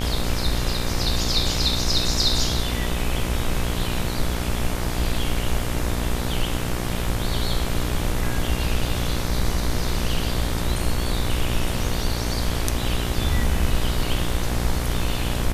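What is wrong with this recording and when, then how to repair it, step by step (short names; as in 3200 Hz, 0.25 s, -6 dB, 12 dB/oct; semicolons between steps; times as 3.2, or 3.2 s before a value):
buzz 60 Hz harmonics 40 -27 dBFS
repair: de-hum 60 Hz, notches 40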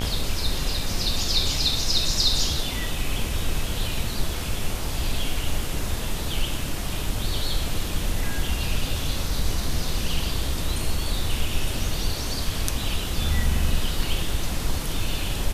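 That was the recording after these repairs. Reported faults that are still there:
none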